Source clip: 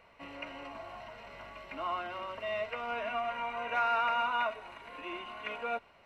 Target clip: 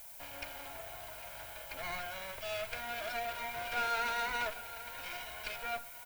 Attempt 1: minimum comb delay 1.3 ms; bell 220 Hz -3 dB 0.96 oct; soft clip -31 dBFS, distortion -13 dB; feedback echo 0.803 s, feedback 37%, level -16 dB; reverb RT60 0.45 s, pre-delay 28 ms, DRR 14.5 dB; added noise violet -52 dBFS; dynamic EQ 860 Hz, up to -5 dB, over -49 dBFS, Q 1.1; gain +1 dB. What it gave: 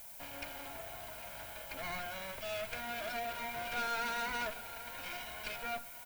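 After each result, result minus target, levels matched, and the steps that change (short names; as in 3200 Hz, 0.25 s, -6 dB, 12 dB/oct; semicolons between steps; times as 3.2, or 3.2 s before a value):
soft clip: distortion +10 dB; 250 Hz band +6.0 dB
change: soft clip -23.5 dBFS, distortion -23 dB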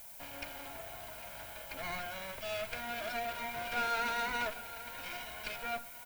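250 Hz band +6.0 dB
change: bell 220 Hz -10.5 dB 0.96 oct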